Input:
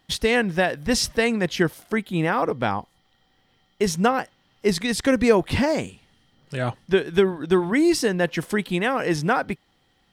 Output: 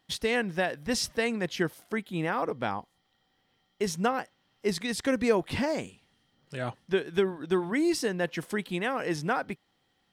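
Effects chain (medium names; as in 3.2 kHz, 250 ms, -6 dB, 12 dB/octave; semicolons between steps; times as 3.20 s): bass shelf 73 Hz -10.5 dB; trim -7 dB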